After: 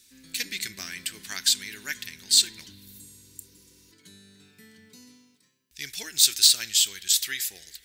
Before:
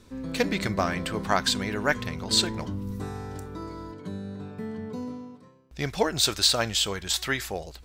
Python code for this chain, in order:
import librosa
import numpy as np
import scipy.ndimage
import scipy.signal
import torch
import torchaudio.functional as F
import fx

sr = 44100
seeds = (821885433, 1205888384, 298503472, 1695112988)

p1 = librosa.effects.preemphasis(x, coef=0.97, zi=[0.0])
p2 = fx.spec_repair(p1, sr, seeds[0], start_s=2.91, length_s=0.98, low_hz=310.0, high_hz=6600.0, source='before')
p3 = fx.band_shelf(p2, sr, hz=800.0, db=-14.5, octaves=1.7)
p4 = 10.0 ** (-19.0 / 20.0) * np.tanh(p3 / 10.0 ** (-19.0 / 20.0))
p5 = p3 + (p4 * 10.0 ** (-10.5 / 20.0))
p6 = fx.rev_spring(p5, sr, rt60_s=2.3, pass_ms=(31, 56), chirp_ms=35, drr_db=19.0)
y = p6 * 10.0 ** (6.0 / 20.0)